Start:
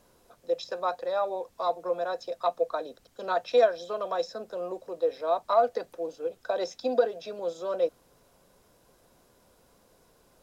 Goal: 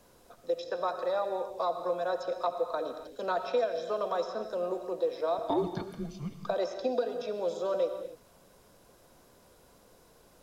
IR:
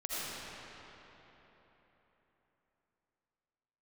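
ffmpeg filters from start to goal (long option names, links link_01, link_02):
-filter_complex "[0:a]asettb=1/sr,asplit=3[link_01][link_02][link_03];[link_01]atrim=end=5.384[link_04];[link_02]atrim=start=5.38:end=6.47,asetpts=PTS-STARTPTS,afade=type=in:duration=0.004:curve=qsin,afade=type=out:start_time=1.086:duration=0.004:curve=qsin,afreqshift=-310[link_05];[link_03]atrim=start=6.466[link_06];[link_04][link_05]acrossfade=duration=0.004:curve1=hsin:curve2=qsin[link_07];[link_07][link_06]acrossfade=duration=0.004:curve1=qsin:curve2=hsin,acrossover=split=320|2500|5100[link_08][link_09][link_10][link_11];[link_08]acompressor=threshold=-40dB:ratio=4[link_12];[link_09]acompressor=threshold=-31dB:ratio=4[link_13];[link_10]acompressor=threshold=-56dB:ratio=4[link_14];[link_11]acompressor=threshold=-58dB:ratio=4[link_15];[link_12][link_13][link_14][link_15]amix=inputs=4:normalize=0,asplit=2[link_16][link_17];[1:a]atrim=start_sample=2205,afade=type=out:start_time=0.34:duration=0.01,atrim=end_sample=15435[link_18];[link_17][link_18]afir=irnorm=-1:irlink=0,volume=-8dB[link_19];[link_16][link_19]amix=inputs=2:normalize=0"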